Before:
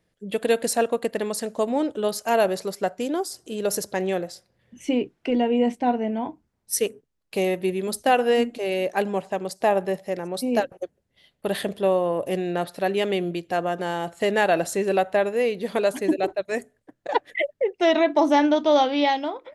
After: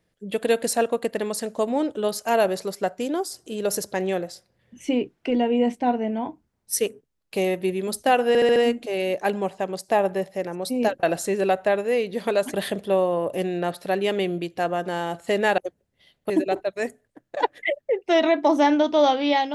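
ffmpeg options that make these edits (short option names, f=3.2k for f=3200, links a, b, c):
-filter_complex "[0:a]asplit=9[a][b][c][d][e][f][g][h][i];[a]atrim=end=8.352[j];[b]atrim=start=8.278:end=8.352[k];[c]atrim=start=8.278:end=8.352[l];[d]atrim=start=8.278:end=8.352[m];[e]atrim=start=8.278:end=10.752[n];[f]atrim=start=14.508:end=16.022[o];[g]atrim=start=11.468:end=14.512[p];[h]atrim=start=10.748:end=11.472[q];[i]atrim=start=16.018[r];[j][k]acrossfade=d=0.004:c1=hsin:c2=hsin[s];[s][l]acrossfade=d=0.004:c1=hsin:c2=hsin[t];[t][m]acrossfade=d=0.004:c1=hsin:c2=hsin[u];[u][n]acrossfade=d=0.004:c1=hsin:c2=hsin[v];[v][o]acrossfade=d=0.004:c1=hsin:c2=hsin[w];[w][p]acrossfade=d=0.004:c1=hsin:c2=hsin[x];[x][q]acrossfade=d=0.004:c1=hsin:c2=hsin[y];[y][r]acrossfade=d=0.004:c1=hsin:c2=hsin"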